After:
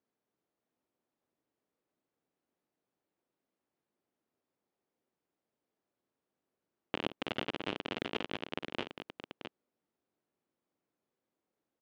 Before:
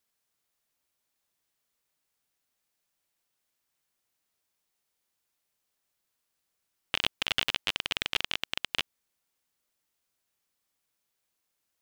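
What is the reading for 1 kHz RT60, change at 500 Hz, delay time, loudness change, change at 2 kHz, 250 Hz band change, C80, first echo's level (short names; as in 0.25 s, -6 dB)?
none, +5.5 dB, 51 ms, -9.0 dB, -9.0 dB, +8.0 dB, none, -16.5 dB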